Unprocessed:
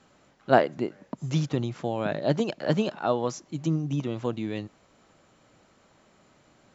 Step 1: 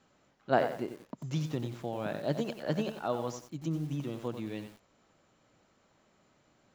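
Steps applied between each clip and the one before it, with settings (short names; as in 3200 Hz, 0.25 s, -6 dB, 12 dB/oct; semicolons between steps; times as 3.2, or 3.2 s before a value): lo-fi delay 91 ms, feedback 35%, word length 7-bit, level -8.5 dB; gain -7.5 dB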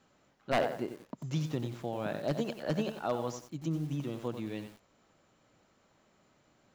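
wavefolder -20.5 dBFS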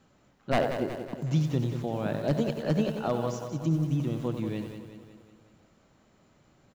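low shelf 260 Hz +8.5 dB; feedback echo 0.184 s, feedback 55%, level -9 dB; gain +1.5 dB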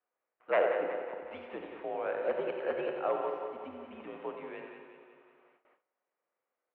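mistuned SSB -66 Hz 510–2600 Hz; Schroeder reverb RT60 1.6 s, combs from 33 ms, DRR 6 dB; gate with hold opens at -55 dBFS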